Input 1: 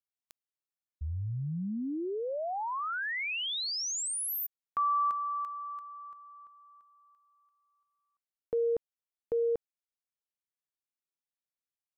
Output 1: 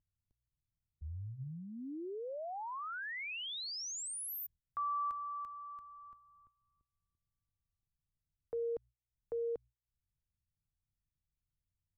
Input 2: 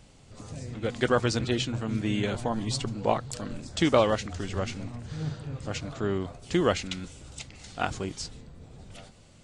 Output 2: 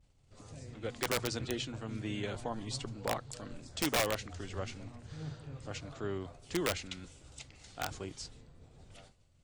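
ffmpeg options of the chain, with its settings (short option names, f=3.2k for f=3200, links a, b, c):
-filter_complex "[0:a]bandreject=f=60:t=h:w=6,bandreject=f=120:t=h:w=6,agate=range=-33dB:threshold=-47dB:ratio=3:release=189:detection=peak,equalizer=f=200:w=2.5:g=-5,acrossover=split=130[a][b];[a]acompressor=mode=upward:threshold=-54dB:ratio=4:attack=8.8:release=107:knee=2.83:detection=peak[c];[c][b]amix=inputs=2:normalize=0,aeval=exprs='(mod(5.62*val(0)+1,2)-1)/5.62':c=same,volume=-8dB"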